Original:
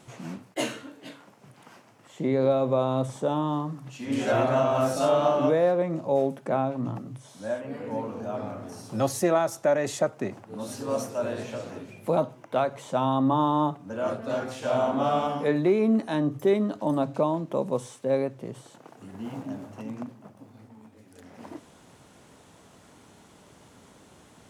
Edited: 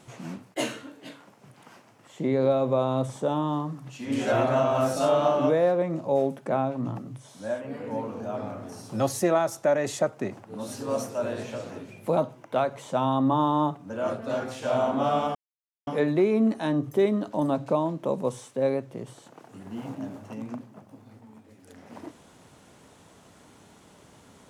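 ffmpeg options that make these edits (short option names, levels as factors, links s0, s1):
-filter_complex "[0:a]asplit=2[s0][s1];[s0]atrim=end=15.35,asetpts=PTS-STARTPTS,afade=t=out:st=15.346:d=0.004:c=hsin,apad=pad_dur=0.52[s2];[s1]atrim=start=15.35,asetpts=PTS-STARTPTS,afade=t=in:d=0.004:c=hsin[s3];[s2][s3]concat=n=2:v=0:a=1"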